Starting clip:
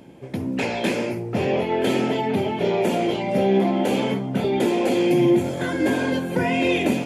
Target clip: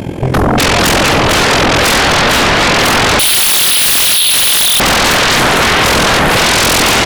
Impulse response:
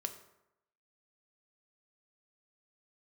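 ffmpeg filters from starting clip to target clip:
-filter_complex "[0:a]equalizer=frequency=86:width_type=o:width=1.1:gain=13.5,tremolo=f=43:d=0.857,asplit=5[link_01][link_02][link_03][link_04][link_05];[link_02]adelay=453,afreqshift=-65,volume=-3.5dB[link_06];[link_03]adelay=906,afreqshift=-130,volume=-12.9dB[link_07];[link_04]adelay=1359,afreqshift=-195,volume=-22.2dB[link_08];[link_05]adelay=1812,afreqshift=-260,volume=-31.6dB[link_09];[link_01][link_06][link_07][link_08][link_09]amix=inputs=5:normalize=0,asettb=1/sr,asplit=3[link_10][link_11][link_12];[link_10]atrim=end=3.194[link_13];[link_11]atrim=start=3.19:end=4.8,asetpts=PTS-STARTPTS,afade=type=in:duration=0.004:curve=qsin,afade=type=out:start_time=1.606:duration=0.004:curve=qsin,lowpass=frequency=3200:width_type=q:width=0.5098,lowpass=frequency=3200:width_type=q:width=0.6013,lowpass=frequency=3200:width_type=q:width=0.9,lowpass=frequency=3200:width_type=q:width=2.563,afreqshift=-3800[link_14];[link_12]atrim=start=4.796[link_15];[link_13][link_14]acrossfade=duration=0.004:curve1=hsin:curve2=qsin[link_16];[link_16][link_15]acrossfade=duration=0.004:curve1=qsin:curve2=hsin,aeval=exprs='0.266*sin(PI/2*8.91*val(0)/0.266)':channel_layout=same,volume=5dB"

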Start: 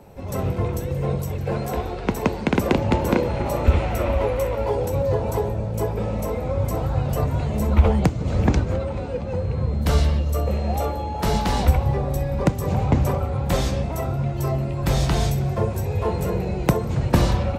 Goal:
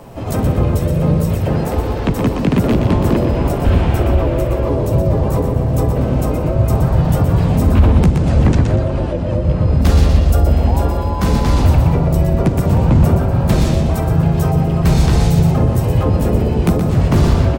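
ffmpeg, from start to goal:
ffmpeg -i in.wav -filter_complex "[0:a]asplit=3[link_01][link_02][link_03];[link_02]asetrate=29433,aresample=44100,atempo=1.49831,volume=-4dB[link_04];[link_03]asetrate=52444,aresample=44100,atempo=0.840896,volume=0dB[link_05];[link_01][link_04][link_05]amix=inputs=3:normalize=0,apsyclip=11dB,asplit=2[link_06][link_07];[link_07]aecho=0:1:121|242|363|484:0.447|0.143|0.0457|0.0146[link_08];[link_06][link_08]amix=inputs=2:normalize=0,acrossover=split=350[link_09][link_10];[link_10]acompressor=threshold=-19dB:ratio=3[link_11];[link_09][link_11]amix=inputs=2:normalize=0,volume=-5dB" out.wav

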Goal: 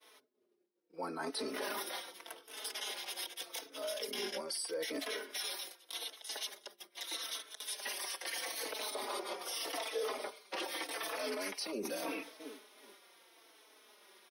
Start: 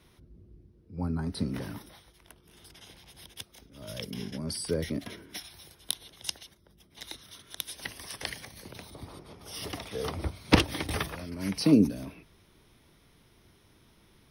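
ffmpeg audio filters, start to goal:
ffmpeg -i in.wav -filter_complex "[0:a]highpass=frequency=420:width=0.5412,highpass=frequency=420:width=1.3066,asplit=2[link_01][link_02];[link_02]adelay=366,lowpass=frequency=3200:poles=1,volume=-24dB,asplit=2[link_03][link_04];[link_04]adelay=366,lowpass=frequency=3200:poles=1,volume=0.4,asplit=2[link_05][link_06];[link_06]adelay=366,lowpass=frequency=3200:poles=1,volume=0.4[link_07];[link_03][link_05][link_07]amix=inputs=3:normalize=0[link_08];[link_01][link_08]amix=inputs=2:normalize=0,agate=range=-33dB:threshold=-58dB:ratio=3:detection=peak,areverse,acompressor=threshold=-45dB:ratio=20,areverse,alimiter=level_in=18dB:limit=-24dB:level=0:latency=1:release=17,volume=-18dB,asplit=2[link_09][link_10];[link_10]adelay=4.1,afreqshift=-0.81[link_11];[link_09][link_11]amix=inputs=2:normalize=1,volume=15.5dB" out.wav

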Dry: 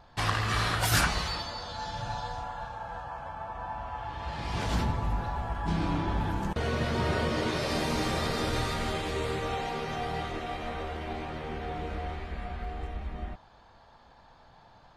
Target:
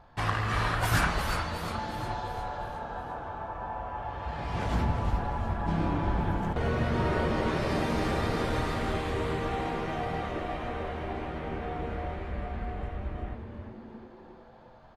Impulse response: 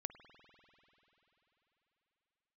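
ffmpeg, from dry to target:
-filter_complex "[0:a]asplit=7[link_01][link_02][link_03][link_04][link_05][link_06][link_07];[link_02]adelay=355,afreqshift=-140,volume=-7dB[link_08];[link_03]adelay=710,afreqshift=-280,volume=-12.7dB[link_09];[link_04]adelay=1065,afreqshift=-420,volume=-18.4dB[link_10];[link_05]adelay=1420,afreqshift=-560,volume=-24dB[link_11];[link_06]adelay=1775,afreqshift=-700,volume=-29.7dB[link_12];[link_07]adelay=2130,afreqshift=-840,volume=-35.4dB[link_13];[link_01][link_08][link_09][link_10][link_11][link_12][link_13]amix=inputs=7:normalize=0,asplit=2[link_14][link_15];[1:a]atrim=start_sample=2205,lowpass=2800[link_16];[link_15][link_16]afir=irnorm=-1:irlink=0,volume=5dB[link_17];[link_14][link_17]amix=inputs=2:normalize=0,volume=-6.5dB"

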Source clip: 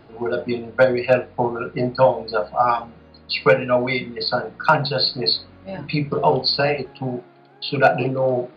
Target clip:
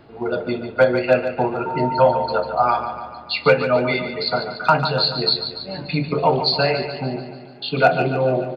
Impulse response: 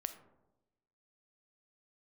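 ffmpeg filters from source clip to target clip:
-filter_complex "[0:a]asettb=1/sr,asplit=3[link_01][link_02][link_03];[link_01]atrim=end=1.664[link_04];[link_02]atrim=start=1.66:end=2.26,asetpts=PTS-STARTPTS,afade=type=in:duration=0.004:curve=qsin,afade=type=out:start_time=0.596:duration=0.004:curve=qsin,aeval=exprs='val(0)+0.0631*sin(2*PI*910*n/s)':channel_layout=same[link_05];[link_03]atrim=start=2.256[link_06];[link_04][link_05]acrossfade=duration=0.004:curve1=hsin:curve2=qsin[link_07];[link_07][link_06]acrossfade=duration=0.004:curve1=qsin:curve2=hsin,aecho=1:1:145|290|435|580|725|870|1015:0.335|0.191|0.109|0.062|0.0354|0.0202|0.0115"

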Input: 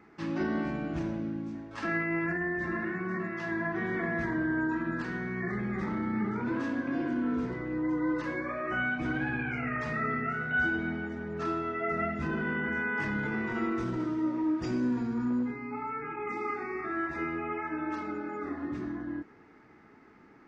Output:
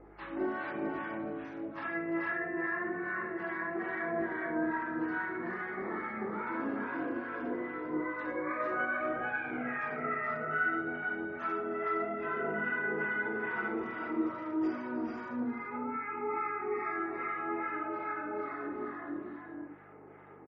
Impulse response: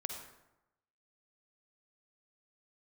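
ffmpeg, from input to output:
-filter_complex "[0:a]acrossover=split=850[link_01][link_02];[link_01]aeval=exprs='val(0)*(1-0.7/2+0.7/2*cos(2*PI*2.4*n/s))':channel_layout=same[link_03];[link_02]aeval=exprs='val(0)*(1-0.7/2-0.7/2*cos(2*PI*2.4*n/s))':channel_layout=same[link_04];[link_03][link_04]amix=inputs=2:normalize=0,acrossover=split=350|680[link_05][link_06][link_07];[link_05]crystalizer=i=9:c=0[link_08];[link_06]acompressor=mode=upward:threshold=-46dB:ratio=2.5[link_09];[link_07]alimiter=level_in=7.5dB:limit=-24dB:level=0:latency=1:release=472,volume=-7.5dB[link_10];[link_08][link_09][link_10]amix=inputs=3:normalize=0,acrossover=split=320 2500:gain=0.1 1 0.158[link_11][link_12][link_13];[link_11][link_12][link_13]amix=inputs=3:normalize=0,flanger=delay=17.5:depth=4.2:speed=0.97,aeval=exprs='val(0)+0.000708*(sin(2*PI*50*n/s)+sin(2*PI*2*50*n/s)/2+sin(2*PI*3*50*n/s)/3+sin(2*PI*4*50*n/s)/4+sin(2*PI*5*50*n/s)/5)':channel_layout=same,aecho=1:1:70|307|415|449:0.211|0.178|0.447|0.708[link_14];[1:a]atrim=start_sample=2205,atrim=end_sample=3528[link_15];[link_14][link_15]afir=irnorm=-1:irlink=0,volume=7dB" -ar 48000 -c:a libmp3lame -b:a 32k

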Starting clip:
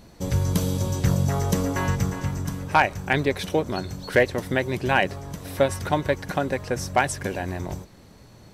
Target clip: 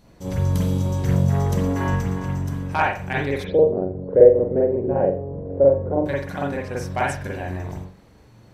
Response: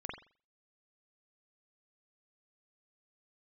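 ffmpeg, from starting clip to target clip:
-filter_complex "[0:a]asplit=3[link_01][link_02][link_03];[link_01]afade=type=out:start_time=3.43:duration=0.02[link_04];[link_02]lowpass=frequency=500:width_type=q:width=4.9,afade=type=in:start_time=3.43:duration=0.02,afade=type=out:start_time=6.05:duration=0.02[link_05];[link_03]afade=type=in:start_time=6.05:duration=0.02[link_06];[link_04][link_05][link_06]amix=inputs=3:normalize=0[link_07];[1:a]atrim=start_sample=2205[link_08];[link_07][link_08]afir=irnorm=-1:irlink=0,volume=-1.5dB"

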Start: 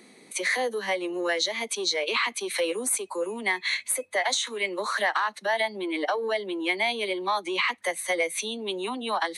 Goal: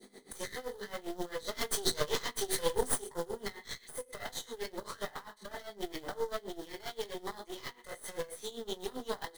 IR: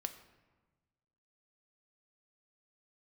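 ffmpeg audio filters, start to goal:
-filter_complex "[0:a]acompressor=threshold=-36dB:ratio=6,adynamicequalizer=threshold=0.002:dfrequency=1400:dqfactor=1.5:tfrequency=1400:tqfactor=1.5:attack=5:release=100:ratio=0.375:range=3.5:mode=cutabove:tftype=bell,acrusher=bits=3:mode=log:mix=0:aa=0.000001,asettb=1/sr,asplit=3[link_01][link_02][link_03];[link_01]atrim=end=1.484[link_04];[link_02]atrim=start=1.48:end=3.02,asetpts=PTS-STARTPTS,afade=type=in:duration=0.004:curve=qsin,afade=type=out:start_time=1.536:duration=0.004:curve=qsin,acontrast=53[link_05];[link_03]atrim=start=3.016[link_06];[link_04][link_05]acrossfade=duration=0.004:curve1=hsin:curve2=qsin[link_07];[link_07][link_06]acrossfade=duration=0.004:curve1=qsin:curve2=hsin,aecho=1:1:20|44|72.8|107.4|148.8:0.631|0.398|0.251|0.158|0.1,asplit=2[link_08][link_09];[1:a]atrim=start_sample=2205[link_10];[link_09][link_10]afir=irnorm=-1:irlink=0,volume=-6dB[link_11];[link_08][link_11]amix=inputs=2:normalize=0,aeval=exprs='0.224*(cos(1*acos(clip(val(0)/0.224,-1,1)))-cos(1*PI/2))+0.0708*(cos(6*acos(clip(val(0)/0.224,-1,1)))-cos(6*PI/2))':channel_layout=same,superequalizer=7b=1.78:12b=0.282,aeval=exprs='val(0)*pow(10,-18*(0.5-0.5*cos(2*PI*7.6*n/s))/20)':channel_layout=same,volume=-4.5dB"

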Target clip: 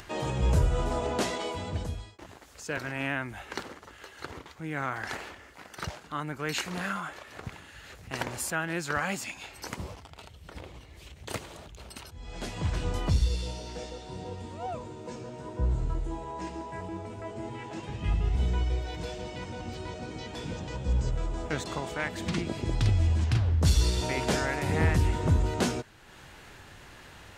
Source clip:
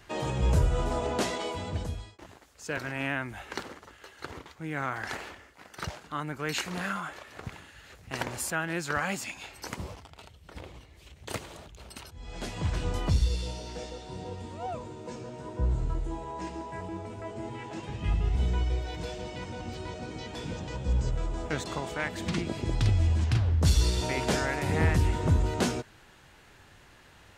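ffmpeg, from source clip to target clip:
ffmpeg -i in.wav -af "acompressor=mode=upward:threshold=-41dB:ratio=2.5" out.wav

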